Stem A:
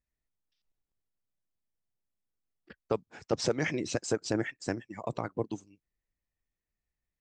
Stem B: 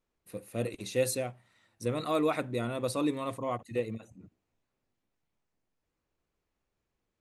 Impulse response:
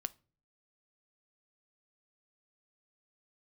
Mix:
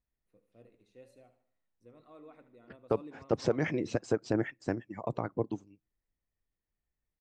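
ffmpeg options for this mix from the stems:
-filter_complex "[0:a]volume=0dB,asplit=3[link_01][link_02][link_03];[link_02]volume=-16.5dB[link_04];[1:a]equalizer=frequency=110:width=1.5:gain=-4,flanger=delay=3.4:depth=9.5:regen=-86:speed=0.56:shape=sinusoidal,volume=-16dB,asplit=3[link_05][link_06][link_07];[link_06]volume=-6.5dB[link_08];[link_07]volume=-16.5dB[link_09];[link_03]apad=whole_len=317703[link_10];[link_05][link_10]sidechaingate=range=-12dB:threshold=-53dB:ratio=16:detection=peak[link_11];[2:a]atrim=start_sample=2205[link_12];[link_04][link_08]amix=inputs=2:normalize=0[link_13];[link_13][link_12]afir=irnorm=-1:irlink=0[link_14];[link_09]aecho=0:1:75|150|225|300|375|450:1|0.44|0.194|0.0852|0.0375|0.0165[link_15];[link_01][link_11][link_14][link_15]amix=inputs=4:normalize=0,lowpass=frequency=1400:poles=1"

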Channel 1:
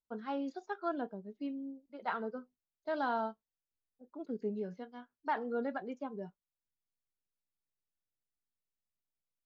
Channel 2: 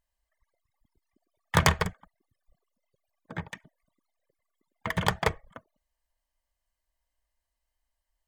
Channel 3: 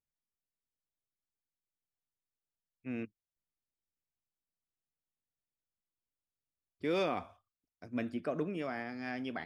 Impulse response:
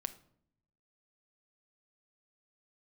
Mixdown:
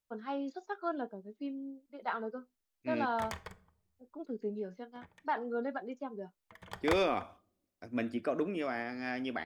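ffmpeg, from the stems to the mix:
-filter_complex "[0:a]volume=0.5dB[link_01];[1:a]adelay=1650,volume=-1.5dB,afade=type=in:start_time=2.87:duration=0.72:silence=0.354813,afade=type=out:start_time=4.89:duration=0.52:silence=0.446684,afade=type=in:start_time=6.61:duration=0.23:silence=0.375837,asplit=2[link_02][link_03];[link_03]volume=-10.5dB[link_04];[2:a]volume=1dB,asplit=3[link_05][link_06][link_07];[link_06]volume=-10.5dB[link_08];[link_07]apad=whole_len=437550[link_09];[link_02][link_09]sidechaingate=range=-16dB:threshold=-57dB:ratio=16:detection=peak[link_10];[3:a]atrim=start_sample=2205[link_11];[link_04][link_08]amix=inputs=2:normalize=0[link_12];[link_12][link_11]afir=irnorm=-1:irlink=0[link_13];[link_01][link_10][link_05][link_13]amix=inputs=4:normalize=0,equalizer=frequency=150:width_type=o:width=0.38:gain=-14"

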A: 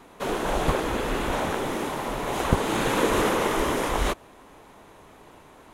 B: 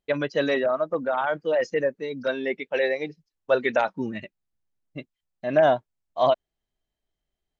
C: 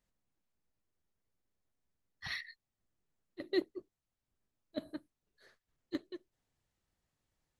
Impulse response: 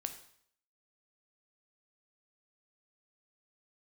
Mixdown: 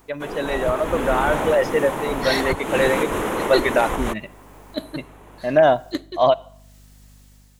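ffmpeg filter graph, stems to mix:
-filter_complex "[0:a]equalizer=frequency=4600:width=1.6:gain=-9.5,alimiter=limit=-15dB:level=0:latency=1:release=324,volume=-5.5dB[link_01];[1:a]volume=-6.5dB,asplit=2[link_02][link_03];[link_03]volume=-9dB[link_04];[2:a]highshelf=frequency=4100:gain=12,acompressor=mode=upward:threshold=-54dB:ratio=2.5,aeval=exprs='val(0)+0.00112*(sin(2*PI*50*n/s)+sin(2*PI*2*50*n/s)/2+sin(2*PI*3*50*n/s)/3+sin(2*PI*4*50*n/s)/4+sin(2*PI*5*50*n/s)/5)':channel_layout=same,volume=0.5dB,asplit=2[link_05][link_06];[link_06]volume=-9dB[link_07];[3:a]atrim=start_sample=2205[link_08];[link_04][link_07]amix=inputs=2:normalize=0[link_09];[link_09][link_08]afir=irnorm=-1:irlink=0[link_10];[link_01][link_02][link_05][link_10]amix=inputs=4:normalize=0,dynaudnorm=framelen=270:gausssize=5:maxgain=9dB"

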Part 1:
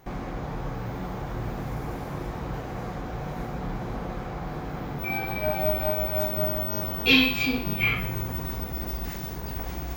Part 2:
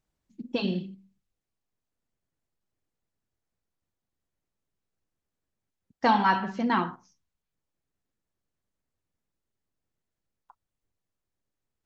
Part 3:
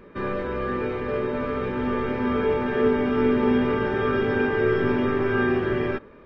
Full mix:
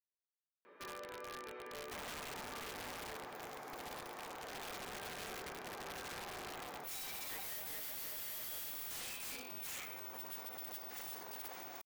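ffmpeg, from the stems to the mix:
ffmpeg -i stem1.wav -i stem2.wav -i stem3.wav -filter_complex "[0:a]acompressor=threshold=-33dB:ratio=8,adelay=1850,volume=-4dB[link_01];[2:a]acompressor=threshold=-34dB:ratio=3,adelay=650,volume=-1dB,afade=type=out:start_time=2.77:duration=0.66:silence=0.266073,afade=type=in:start_time=4.35:duration=0.58:silence=0.398107[link_02];[link_01][link_02]amix=inputs=2:normalize=0,highpass=540,aeval=exprs='(mod(100*val(0)+1,2)-1)/100':channel_layout=same" out.wav

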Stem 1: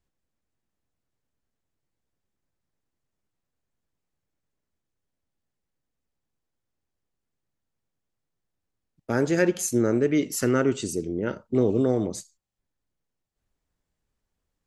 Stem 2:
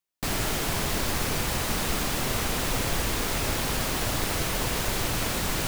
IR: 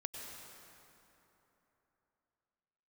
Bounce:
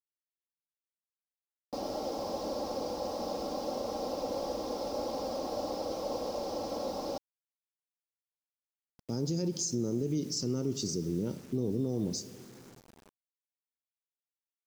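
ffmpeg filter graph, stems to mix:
-filter_complex "[0:a]equalizer=frequency=160:width_type=o:width=0.67:gain=9,equalizer=frequency=630:width_type=o:width=0.67:gain=-8,equalizer=frequency=1600:width_type=o:width=0.67:gain=-7,volume=-6dB,asplit=2[link_01][link_02];[link_02]volume=-13dB[link_03];[1:a]bandpass=frequency=580:width_type=q:width=1.6:csg=0,aecho=1:1:3.7:0.64,adelay=1500,volume=0.5dB[link_04];[2:a]atrim=start_sample=2205[link_05];[link_03][link_05]afir=irnorm=-1:irlink=0[link_06];[link_01][link_04][link_06]amix=inputs=3:normalize=0,firequalizer=gain_entry='entry(650,0);entry(1100,-5);entry(1700,-18);entry(5200,14);entry(11000,-29)':delay=0.05:min_phase=1,acrusher=bits=8:mix=0:aa=0.000001,alimiter=limit=-23.5dB:level=0:latency=1:release=79"

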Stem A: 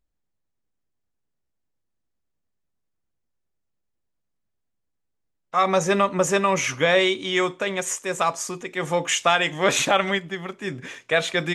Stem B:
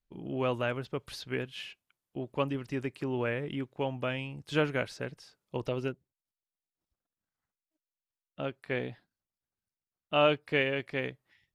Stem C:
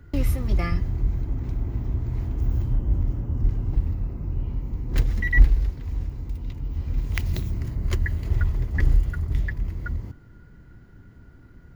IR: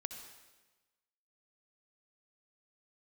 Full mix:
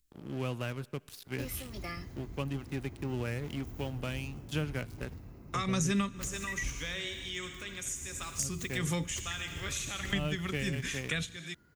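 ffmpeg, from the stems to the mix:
-filter_complex "[0:a]equalizer=frequency=660:width_type=o:width=1.3:gain=-15,volume=1dB,asplit=2[link_01][link_02];[link_02]volume=-15dB[link_03];[1:a]bass=frequency=250:gain=9,treble=frequency=4000:gain=-8,crystalizer=i=2:c=0,aeval=exprs='sgn(val(0))*max(abs(val(0))-0.00944,0)':channel_layout=same,volume=-6dB,asplit=3[link_04][link_05][link_06];[link_05]volume=-17.5dB[link_07];[2:a]highpass=frequency=260:poles=1,adelay=1250,volume=-10dB[link_08];[link_06]apad=whole_len=509153[link_09];[link_01][link_09]sidechaingate=range=-33dB:threshold=-59dB:ratio=16:detection=peak[link_10];[3:a]atrim=start_sample=2205[link_11];[link_03][link_07]amix=inputs=2:normalize=0[link_12];[link_12][link_11]afir=irnorm=-1:irlink=0[link_13];[link_10][link_04][link_08][link_13]amix=inputs=4:normalize=0,highshelf=frequency=3900:gain=11.5,acrossover=split=230[link_14][link_15];[link_15]acompressor=threshold=-34dB:ratio=5[link_16];[link_14][link_16]amix=inputs=2:normalize=0,equalizer=frequency=930:width_type=o:width=0.21:gain=-2"

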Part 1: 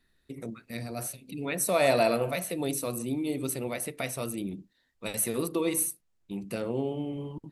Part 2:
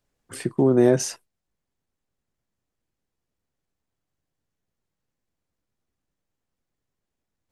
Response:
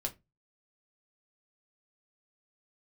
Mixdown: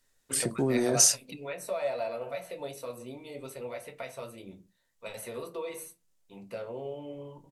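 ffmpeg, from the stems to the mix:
-filter_complex "[0:a]firequalizer=gain_entry='entry(310,0);entry(550,12);entry(10000,-6)':delay=0.05:min_phase=1,acompressor=threshold=-22dB:ratio=2.5,volume=-6dB,asplit=2[link_01][link_02];[link_02]volume=-9dB[link_03];[1:a]alimiter=limit=-14.5dB:level=0:latency=1:release=56,equalizer=frequency=8600:width_type=o:width=2.9:gain=13,volume=-7dB,asplit=3[link_04][link_05][link_06];[link_05]volume=-10.5dB[link_07];[link_06]apad=whole_len=335732[link_08];[link_01][link_08]sidechaingate=range=-33dB:threshold=-58dB:ratio=16:detection=peak[link_09];[2:a]atrim=start_sample=2205[link_10];[link_03][link_07]amix=inputs=2:normalize=0[link_11];[link_11][link_10]afir=irnorm=-1:irlink=0[link_12];[link_09][link_04][link_12]amix=inputs=3:normalize=0,highshelf=frequency=8100:gain=5"

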